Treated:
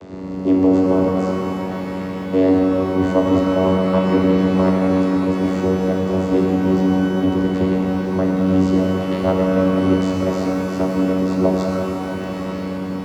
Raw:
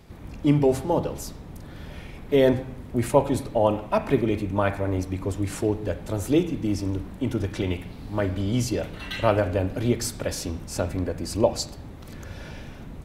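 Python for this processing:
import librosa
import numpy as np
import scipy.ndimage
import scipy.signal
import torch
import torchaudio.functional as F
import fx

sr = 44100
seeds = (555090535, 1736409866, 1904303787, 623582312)

y = fx.bin_compress(x, sr, power=0.6)
y = fx.vocoder(y, sr, bands=16, carrier='saw', carrier_hz=93.8)
y = fx.rev_shimmer(y, sr, seeds[0], rt60_s=3.7, semitones=12, shimmer_db=-8, drr_db=-0.5)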